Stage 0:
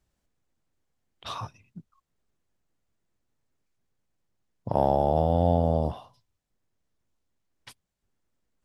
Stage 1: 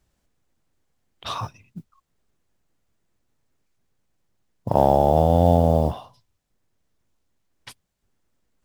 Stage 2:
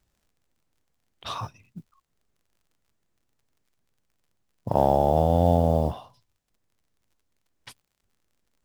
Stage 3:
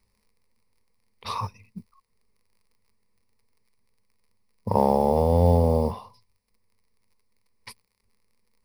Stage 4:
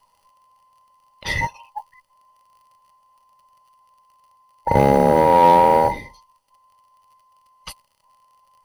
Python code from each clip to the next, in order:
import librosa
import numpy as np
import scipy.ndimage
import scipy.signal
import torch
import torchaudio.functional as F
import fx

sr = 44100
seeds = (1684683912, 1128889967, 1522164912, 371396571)

y1 = fx.mod_noise(x, sr, seeds[0], snr_db=33)
y1 = y1 * librosa.db_to_amplitude(6.0)
y2 = fx.dmg_crackle(y1, sr, seeds[1], per_s=47.0, level_db=-52.0)
y2 = y2 * librosa.db_to_amplitude(-3.5)
y3 = fx.ripple_eq(y2, sr, per_octave=0.89, db=13)
y4 = fx.band_invert(y3, sr, width_hz=1000)
y4 = fx.cheby_harmonics(y4, sr, harmonics=(5, 8), levels_db=(-23, -30), full_scale_db=-6.0)
y4 = y4 * librosa.db_to_amplitude(5.0)